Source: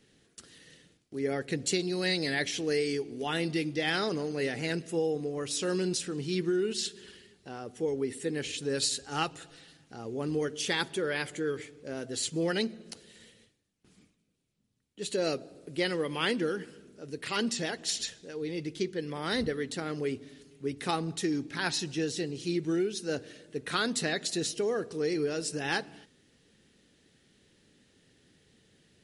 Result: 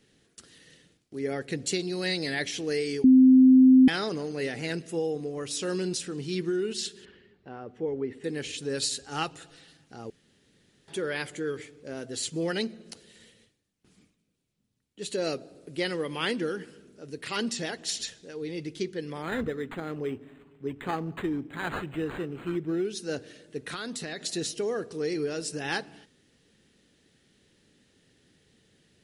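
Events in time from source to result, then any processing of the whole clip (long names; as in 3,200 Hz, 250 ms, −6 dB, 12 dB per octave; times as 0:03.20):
0:03.04–0:03.88: beep over 259 Hz −12 dBFS
0:07.05–0:08.24: low-pass filter 2,100 Hz
0:10.10–0:10.88: fill with room tone
0:19.22–0:22.85: linearly interpolated sample-rate reduction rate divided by 8×
0:23.67–0:24.21: downward compressor, threshold −32 dBFS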